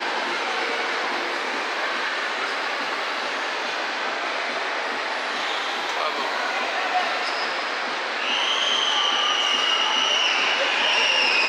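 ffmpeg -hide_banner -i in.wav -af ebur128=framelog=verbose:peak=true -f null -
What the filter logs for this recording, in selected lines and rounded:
Integrated loudness:
  I:         -22.1 LUFS
  Threshold: -32.0 LUFS
Loudness range:
  LRA:         5.7 LU
  Threshold: -42.7 LUFS
  LRA low:   -24.9 LUFS
  LRA high:  -19.3 LUFS
True peak:
  Peak:      -11.2 dBFS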